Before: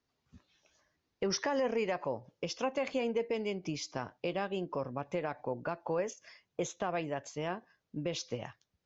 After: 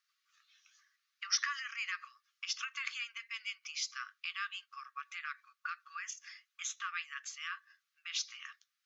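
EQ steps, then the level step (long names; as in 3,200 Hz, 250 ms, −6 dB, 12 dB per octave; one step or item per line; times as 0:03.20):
linear-phase brick-wall high-pass 1,100 Hz
+4.0 dB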